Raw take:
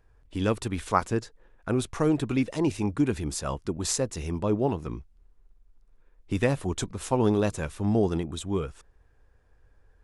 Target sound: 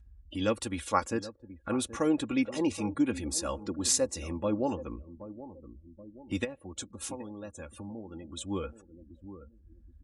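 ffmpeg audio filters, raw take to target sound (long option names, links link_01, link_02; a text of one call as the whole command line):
ffmpeg -i in.wav -filter_complex "[0:a]asplit=3[link_01][link_02][link_03];[link_01]afade=type=out:start_time=6.43:duration=0.02[link_04];[link_02]acompressor=threshold=-35dB:ratio=6,afade=type=in:start_time=6.43:duration=0.02,afade=type=out:start_time=8.46:duration=0.02[link_05];[link_03]afade=type=in:start_time=8.46:duration=0.02[link_06];[link_04][link_05][link_06]amix=inputs=3:normalize=0,aecho=1:1:3.6:0.67,asplit=2[link_07][link_08];[link_08]adelay=776,lowpass=frequency=1400:poles=1,volume=-14.5dB,asplit=2[link_09][link_10];[link_10]adelay=776,lowpass=frequency=1400:poles=1,volume=0.27,asplit=2[link_11][link_12];[link_12]adelay=776,lowpass=frequency=1400:poles=1,volume=0.27[link_13];[link_07][link_09][link_11][link_13]amix=inputs=4:normalize=0,adynamicequalizer=threshold=0.00891:dfrequency=490:dqfactor=3.7:tfrequency=490:tqfactor=3.7:attack=5:release=100:ratio=0.375:range=2.5:mode=boostabove:tftype=bell,afftdn=noise_reduction=33:noise_floor=-48,highpass=frequency=48:width=0.5412,highpass=frequency=48:width=1.3066,acompressor=mode=upward:threshold=-33dB:ratio=2.5,highshelf=frequency=2300:gain=8,volume=-6.5dB" out.wav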